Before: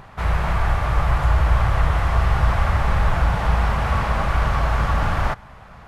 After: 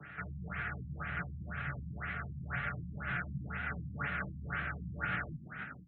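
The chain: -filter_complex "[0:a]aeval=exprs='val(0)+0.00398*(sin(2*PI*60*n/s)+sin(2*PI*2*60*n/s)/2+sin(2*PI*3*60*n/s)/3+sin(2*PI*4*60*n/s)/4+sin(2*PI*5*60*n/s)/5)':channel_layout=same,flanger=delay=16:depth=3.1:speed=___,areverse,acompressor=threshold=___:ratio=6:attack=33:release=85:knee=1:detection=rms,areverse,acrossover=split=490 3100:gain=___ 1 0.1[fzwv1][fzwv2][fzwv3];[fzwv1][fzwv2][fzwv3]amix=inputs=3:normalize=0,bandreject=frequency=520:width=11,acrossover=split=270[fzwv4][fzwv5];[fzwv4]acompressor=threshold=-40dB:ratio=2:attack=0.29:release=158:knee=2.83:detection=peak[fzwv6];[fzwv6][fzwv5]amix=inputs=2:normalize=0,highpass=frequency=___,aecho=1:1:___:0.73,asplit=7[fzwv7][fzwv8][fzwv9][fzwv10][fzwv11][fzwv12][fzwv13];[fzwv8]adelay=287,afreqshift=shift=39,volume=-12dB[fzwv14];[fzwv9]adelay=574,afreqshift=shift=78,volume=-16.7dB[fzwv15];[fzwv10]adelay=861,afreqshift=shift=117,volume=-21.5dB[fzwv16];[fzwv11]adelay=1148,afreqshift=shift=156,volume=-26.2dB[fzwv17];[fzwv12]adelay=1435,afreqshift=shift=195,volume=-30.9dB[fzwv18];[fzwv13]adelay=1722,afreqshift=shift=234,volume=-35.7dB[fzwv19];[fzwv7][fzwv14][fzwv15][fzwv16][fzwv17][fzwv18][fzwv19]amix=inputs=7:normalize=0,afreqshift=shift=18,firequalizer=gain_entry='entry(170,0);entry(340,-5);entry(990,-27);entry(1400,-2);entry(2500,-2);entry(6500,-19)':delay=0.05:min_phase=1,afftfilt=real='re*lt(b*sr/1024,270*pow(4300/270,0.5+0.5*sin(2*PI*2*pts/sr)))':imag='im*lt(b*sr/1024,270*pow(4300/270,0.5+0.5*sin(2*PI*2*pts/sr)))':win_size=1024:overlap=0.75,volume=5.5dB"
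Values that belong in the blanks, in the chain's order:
3, -29dB, 0.251, 61, 7.1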